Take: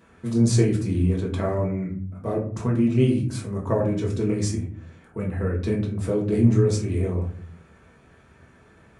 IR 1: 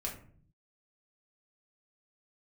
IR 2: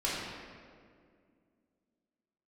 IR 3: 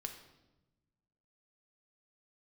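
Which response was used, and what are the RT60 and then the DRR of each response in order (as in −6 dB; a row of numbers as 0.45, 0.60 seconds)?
1; 0.50, 2.1, 1.0 seconds; −2.5, −8.0, 3.5 decibels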